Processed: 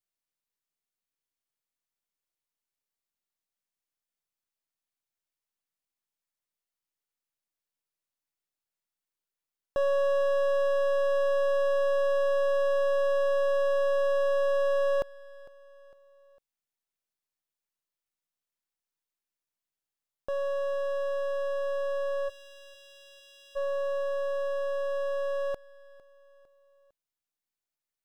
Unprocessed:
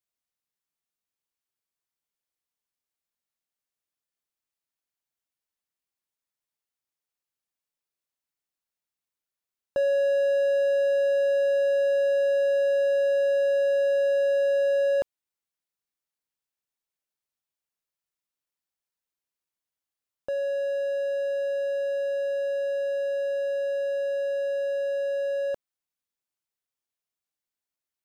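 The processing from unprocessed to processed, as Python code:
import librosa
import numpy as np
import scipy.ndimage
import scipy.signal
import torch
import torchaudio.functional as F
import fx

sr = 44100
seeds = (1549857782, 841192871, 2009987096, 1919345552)

y = np.where(x < 0.0, 10.0 ** (-7.0 / 20.0) * x, x)
y = fx.steep_highpass(y, sr, hz=2500.0, slope=36, at=(22.28, 23.55), fade=0.02)
y = fx.echo_feedback(y, sr, ms=454, feedback_pct=47, wet_db=-20.5)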